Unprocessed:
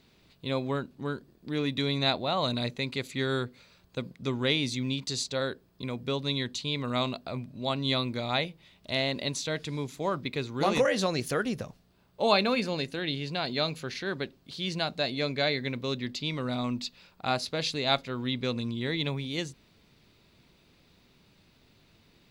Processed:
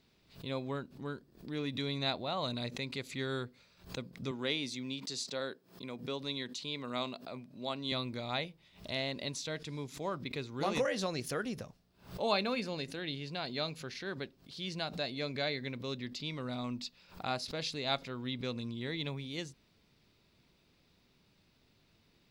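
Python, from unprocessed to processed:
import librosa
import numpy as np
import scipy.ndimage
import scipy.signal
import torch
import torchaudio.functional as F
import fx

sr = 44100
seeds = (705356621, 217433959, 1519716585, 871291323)

y = fx.highpass(x, sr, hz=190.0, slope=12, at=(4.31, 7.92))
y = fx.peak_eq(y, sr, hz=5300.0, db=4.0, octaves=0.2)
y = fx.pre_swell(y, sr, db_per_s=140.0)
y = y * librosa.db_to_amplitude(-7.5)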